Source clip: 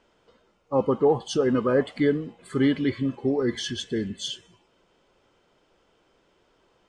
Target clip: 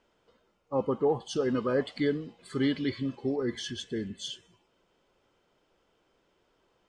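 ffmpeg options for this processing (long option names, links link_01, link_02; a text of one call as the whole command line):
ffmpeg -i in.wav -filter_complex "[0:a]asettb=1/sr,asplit=3[link_01][link_02][link_03];[link_01]atrim=end=1.364[link_04];[link_02]atrim=start=1.36:end=3.36,asetpts=PTS-STARTPTS,afade=type=in:duration=0.004:curve=qsin,afade=type=out:start_time=1.996:duration=0.004:curve=qsin,equalizer=frequency=4600:width_type=o:width=1:gain=9.5[link_05];[link_03]atrim=start=3.356[link_06];[link_04][link_05]acrossfade=duration=0.004:curve1=hsin:curve2=qsin[link_07];[link_07][link_06]acrossfade=duration=0.004:curve1=qsin:curve2=hsin,volume=-6dB" out.wav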